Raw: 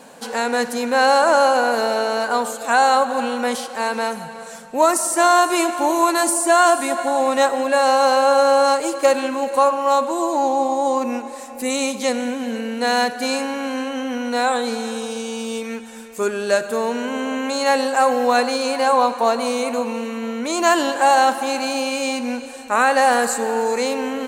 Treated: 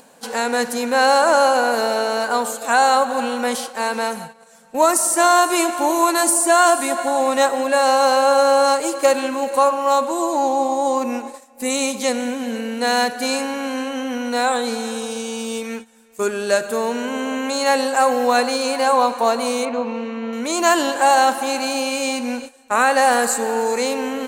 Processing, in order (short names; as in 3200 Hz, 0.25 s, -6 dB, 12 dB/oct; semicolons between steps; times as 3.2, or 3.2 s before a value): gate -31 dBFS, range -16 dB; high shelf 7100 Hz +5.5 dB; upward compressor, threshold -40 dBFS; 19.65–20.33 air absorption 200 m